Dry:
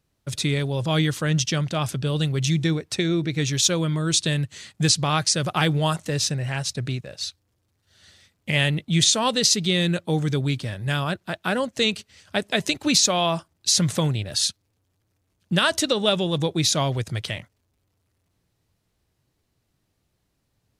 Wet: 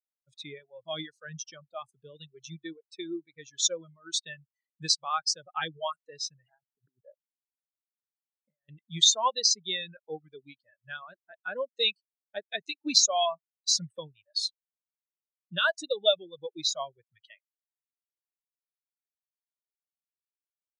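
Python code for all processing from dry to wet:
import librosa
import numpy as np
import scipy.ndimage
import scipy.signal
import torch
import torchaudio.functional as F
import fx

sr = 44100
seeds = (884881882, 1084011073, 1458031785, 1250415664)

y = fx.chain(x, sr, fx.lowpass(hz=1500.0, slope=24),
    fx.over_compress(threshold_db=-31.0, ratio=-0.5), at=(6.5, 8.69))
y = fx.highpass(y, sr, hz=840.0, slope=6)
y = fx.dereverb_blind(y, sr, rt60_s=1.8)
y = fx.spectral_expand(y, sr, expansion=2.5)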